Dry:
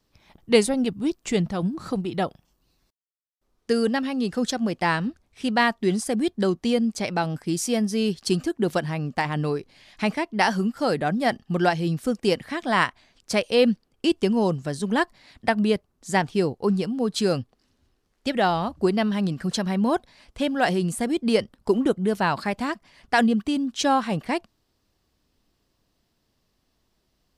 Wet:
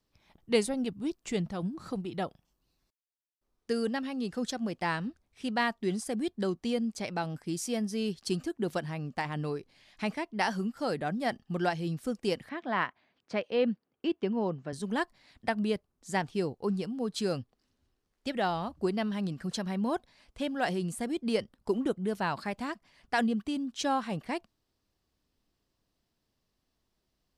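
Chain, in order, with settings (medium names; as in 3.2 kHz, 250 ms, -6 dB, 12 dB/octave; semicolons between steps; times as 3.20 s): 12.49–14.73 s: band-pass 150–2600 Hz; trim -8.5 dB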